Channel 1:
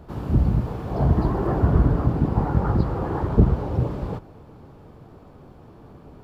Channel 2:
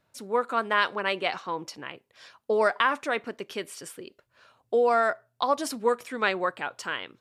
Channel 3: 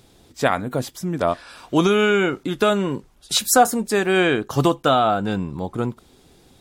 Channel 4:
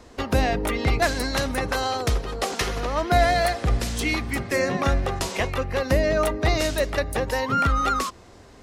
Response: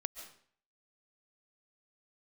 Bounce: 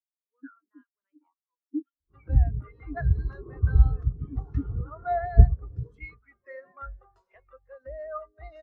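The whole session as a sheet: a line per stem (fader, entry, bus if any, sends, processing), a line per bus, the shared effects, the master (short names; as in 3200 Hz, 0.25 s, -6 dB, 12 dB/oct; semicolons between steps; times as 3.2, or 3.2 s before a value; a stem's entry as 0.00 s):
-4.0 dB, 2.00 s, no send, low shelf 75 Hz +9 dB; small resonant body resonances 420/1100 Hz, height 8 dB
-12.0 dB, 0.00 s, no send, high shelf 3800 Hz +12 dB; flange 1.7 Hz, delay 8.3 ms, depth 4.9 ms, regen +63%
+2.0 dB, 0.00 s, no send, median-filter separation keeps percussive; comb 3.5 ms, depth 31%; vowel sweep i-u 0.45 Hz
-0.5 dB, 1.95 s, no send, bell 130 Hz -9.5 dB 2.8 oct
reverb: off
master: bell 1400 Hz +6.5 dB 0.66 oct; spectral expander 2.5:1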